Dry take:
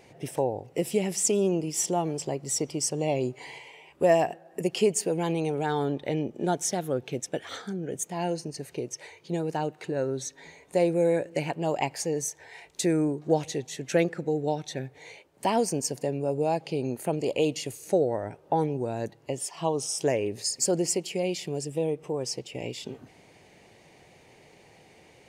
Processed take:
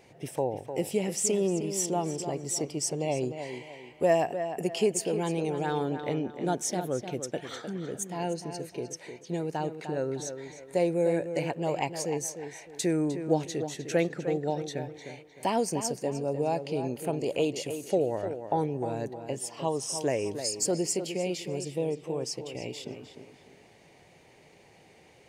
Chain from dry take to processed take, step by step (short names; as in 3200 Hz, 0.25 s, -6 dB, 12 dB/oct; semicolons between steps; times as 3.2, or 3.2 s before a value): tape echo 0.304 s, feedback 37%, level -8 dB, low-pass 3400 Hz; gain -2.5 dB